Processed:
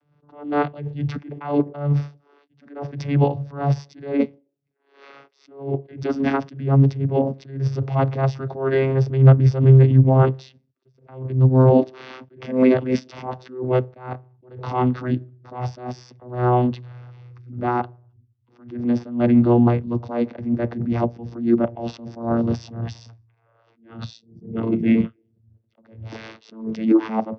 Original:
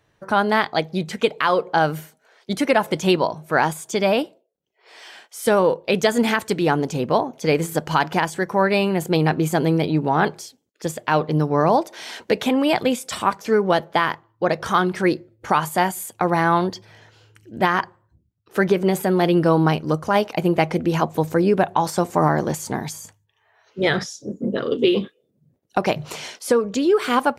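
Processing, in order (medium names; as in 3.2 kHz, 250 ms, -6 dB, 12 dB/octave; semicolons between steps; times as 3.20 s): vocoder on a note that slides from D3, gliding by -5 st; formant shift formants -5 st; attacks held to a fixed rise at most 120 dB/s; trim +5 dB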